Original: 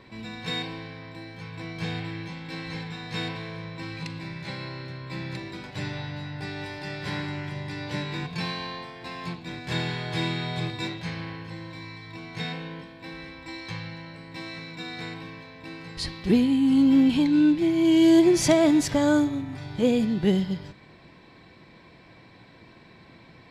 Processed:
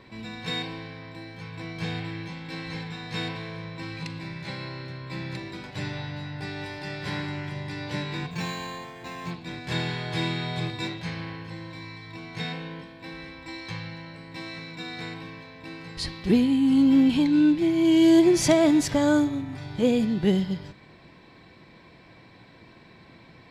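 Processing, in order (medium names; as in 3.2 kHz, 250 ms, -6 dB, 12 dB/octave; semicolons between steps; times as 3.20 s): 8.31–9.31 s: decimation joined by straight lines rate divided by 4×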